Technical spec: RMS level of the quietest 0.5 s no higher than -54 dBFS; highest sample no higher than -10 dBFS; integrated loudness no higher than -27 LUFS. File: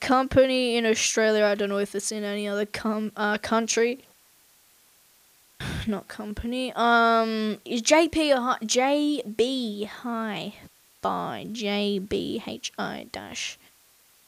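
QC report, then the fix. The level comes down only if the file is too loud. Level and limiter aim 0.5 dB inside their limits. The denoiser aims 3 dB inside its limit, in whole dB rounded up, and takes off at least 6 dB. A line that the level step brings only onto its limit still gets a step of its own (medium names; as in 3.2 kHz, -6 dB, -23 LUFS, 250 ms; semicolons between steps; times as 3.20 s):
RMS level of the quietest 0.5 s -59 dBFS: pass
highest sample -6.0 dBFS: fail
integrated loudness -25.0 LUFS: fail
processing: trim -2.5 dB; peak limiter -10.5 dBFS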